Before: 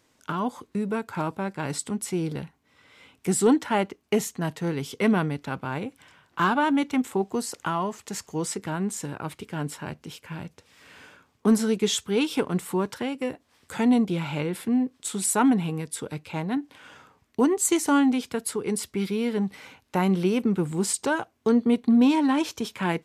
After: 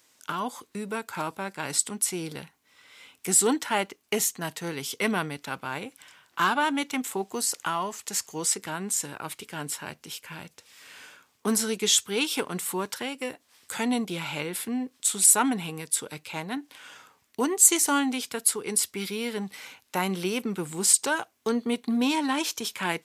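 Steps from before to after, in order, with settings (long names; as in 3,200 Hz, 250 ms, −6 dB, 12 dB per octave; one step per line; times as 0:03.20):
spectral tilt +3 dB per octave
level −1 dB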